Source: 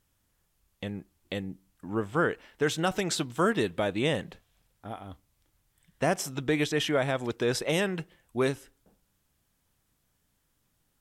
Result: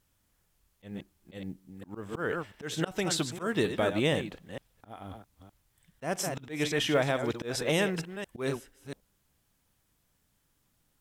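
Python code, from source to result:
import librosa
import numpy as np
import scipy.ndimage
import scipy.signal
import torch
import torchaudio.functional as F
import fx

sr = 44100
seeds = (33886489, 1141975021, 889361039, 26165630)

y = fx.reverse_delay(x, sr, ms=229, wet_db=-10.0)
y = fx.auto_swell(y, sr, attack_ms=181.0)
y = fx.quant_companded(y, sr, bits=8)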